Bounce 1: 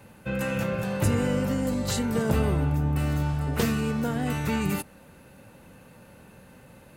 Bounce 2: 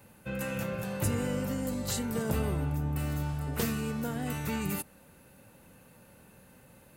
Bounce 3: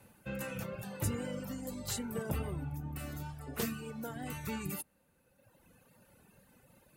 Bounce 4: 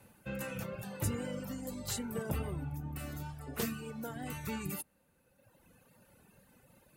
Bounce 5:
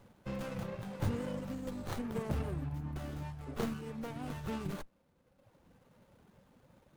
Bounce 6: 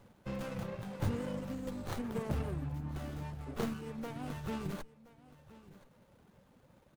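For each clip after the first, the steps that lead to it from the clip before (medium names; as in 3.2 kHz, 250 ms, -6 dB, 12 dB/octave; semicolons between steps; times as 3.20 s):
treble shelf 8.5 kHz +10.5 dB; trim -6.5 dB
wow and flutter 22 cents; reverb removal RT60 1.7 s; trim -3.5 dB
no audible change
sliding maximum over 17 samples; trim +1 dB
delay 1023 ms -18.5 dB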